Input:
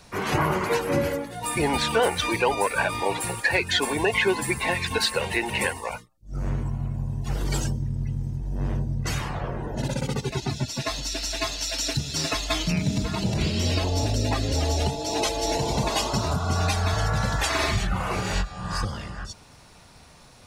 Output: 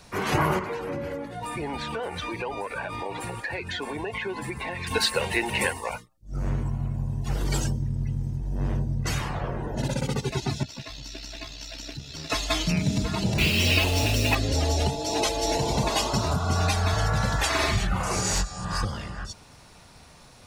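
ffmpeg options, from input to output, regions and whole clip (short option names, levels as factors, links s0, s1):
-filter_complex "[0:a]asettb=1/sr,asplit=3[s0][s1][s2];[s0]atrim=end=0.594[s3];[s1]atrim=start=0.59:end=4.87,asetpts=PTS-STARTPTS,afade=t=in:d=0.004:c=qsin,afade=t=out:st=4.276:d=0.004:c=qsin,lowpass=f=2400:p=1,acompressor=threshold=0.0355:ratio=4:attack=3.2:release=140:knee=1:detection=peak[s4];[s2]atrim=start=4.866[s5];[s3][s4]acrossfade=d=0.004:c1=hsin:c2=qsin[s6];[s6][s5]acrossfade=d=0.004:c1=qsin:c2=hsin,asettb=1/sr,asplit=3[s7][s8][s9];[s7]atrim=end=10.634[s10];[s8]atrim=start=10.63:end=12.3,asetpts=PTS-STARTPTS,afade=t=in:d=0.004:c=qsin,afade=t=out:st=1.666:d=0.004:c=qsin,equalizer=f=9800:w=0.72:g=-14.5,acrossover=split=100|270|2300[s11][s12][s13][s14];[s11]acompressor=threshold=0.00891:ratio=3[s15];[s12]acompressor=threshold=0.00794:ratio=3[s16];[s13]acompressor=threshold=0.00501:ratio=3[s17];[s14]acompressor=threshold=0.0141:ratio=3[s18];[s15][s16][s17][s18]amix=inputs=4:normalize=0,tremolo=f=65:d=0.519[s19];[s9]atrim=start=12.296[s20];[s10][s19]acrossfade=d=0.004:c1=hsin:c2=qsin[s21];[s21][s20]acrossfade=d=0.004:c1=qsin:c2=hsin,asettb=1/sr,asplit=3[s22][s23][s24];[s22]atrim=end=13.384[s25];[s23]atrim=start=13.38:end=14.35,asetpts=PTS-STARTPTS,afade=t=in:d=0.004:c=qsin,afade=t=out:st=0.966:d=0.004:c=qsin,equalizer=f=2600:t=o:w=0.68:g=14,acrusher=bits=4:mix=0:aa=0.5[s26];[s24]atrim=start=14.346[s27];[s25][s26]acrossfade=d=0.004:c1=hsin:c2=qsin[s28];[s28][s27]acrossfade=d=0.004:c1=qsin:c2=hsin,asettb=1/sr,asplit=3[s29][s30][s31];[s29]atrim=end=18.034[s32];[s30]atrim=start=18.03:end=18.65,asetpts=PTS-STARTPTS,afade=t=in:d=0.004:c=qsin,afade=t=out:st=0.616:d=0.004:c=qsin,highshelf=f=4500:t=q:w=1.5:g=11.5,aeval=exprs='0.126*(abs(mod(val(0)/0.126+3,4)-2)-1)':c=same,lowpass=9100[s33];[s31]atrim=start=18.646[s34];[s32][s33]acrossfade=d=0.004:c1=hsin:c2=qsin[s35];[s35][s34]acrossfade=d=0.004:c1=qsin:c2=hsin"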